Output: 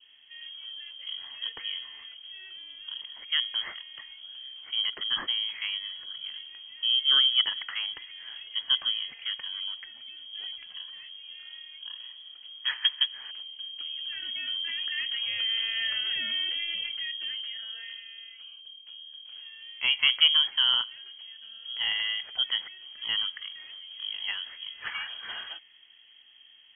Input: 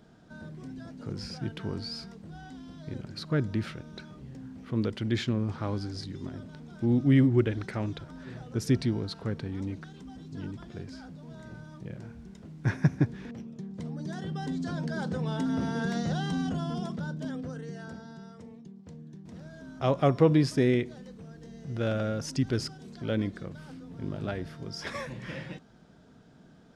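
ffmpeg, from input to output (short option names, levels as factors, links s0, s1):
-filter_complex "[0:a]acrossover=split=120[s0][s1];[s0]acompressor=threshold=0.00316:ratio=6[s2];[s2][s1]amix=inputs=2:normalize=0,adynamicequalizer=threshold=0.00251:dfrequency=1400:dqfactor=2:tfrequency=1400:tqfactor=2:attack=5:release=100:ratio=0.375:range=3:mode=boostabove:tftype=bell,lowpass=f=2900:t=q:w=0.5098,lowpass=f=2900:t=q:w=0.6013,lowpass=f=2900:t=q:w=0.9,lowpass=f=2900:t=q:w=2.563,afreqshift=-3400"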